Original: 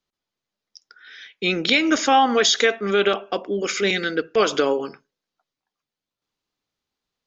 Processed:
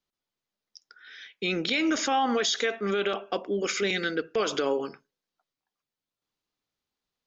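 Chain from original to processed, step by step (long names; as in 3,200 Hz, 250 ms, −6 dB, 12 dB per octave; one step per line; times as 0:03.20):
brickwall limiter −13 dBFS, peak gain reduction 6.5 dB
level −4 dB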